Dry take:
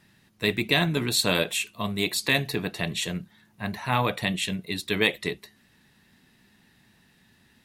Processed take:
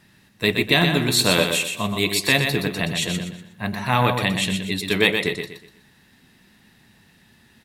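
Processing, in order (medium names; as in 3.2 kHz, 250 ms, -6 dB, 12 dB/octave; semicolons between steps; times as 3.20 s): feedback delay 122 ms, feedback 33%, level -6 dB; trim +4.5 dB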